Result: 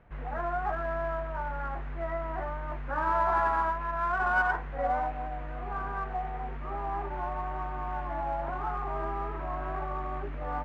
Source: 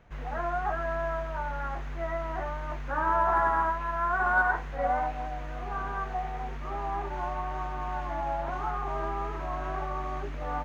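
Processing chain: LPF 2300 Hz 12 dB/oct; in parallel at -9.5 dB: one-sided clip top -32.5 dBFS; on the sum: gain -3 dB

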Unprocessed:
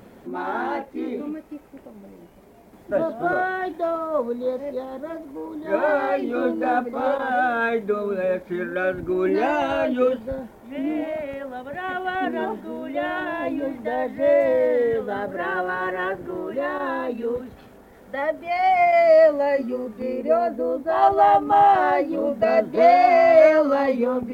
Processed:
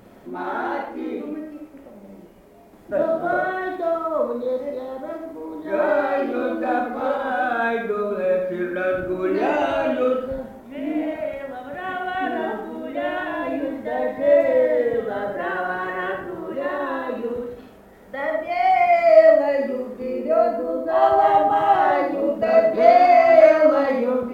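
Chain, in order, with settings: digital reverb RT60 0.62 s, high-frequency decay 0.65×, pre-delay 10 ms, DRR 1 dB; gain -2 dB

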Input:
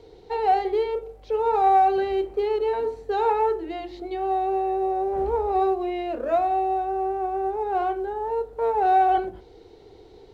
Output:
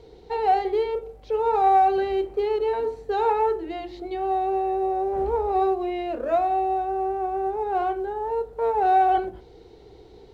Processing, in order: hum 60 Hz, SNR 34 dB

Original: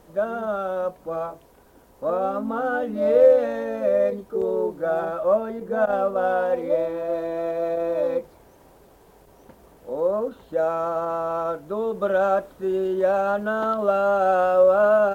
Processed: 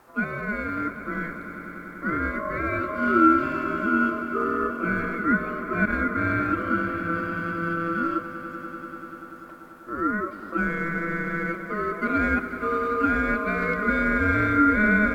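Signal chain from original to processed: ring modulator 840 Hz; swelling echo 97 ms, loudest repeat 5, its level -16 dB

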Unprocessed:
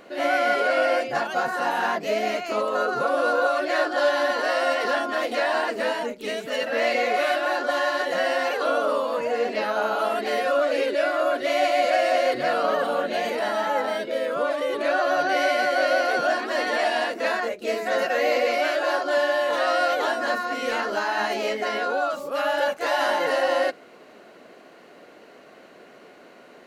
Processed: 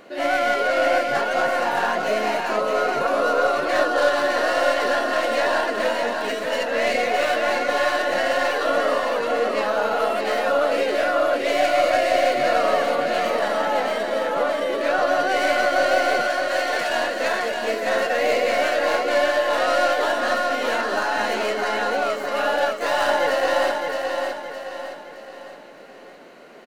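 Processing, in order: tracing distortion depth 0.059 ms; 16.22–16.9 HPF 1400 Hz 6 dB/oct; feedback echo 0.616 s, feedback 43%, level -4.5 dB; gain +1 dB

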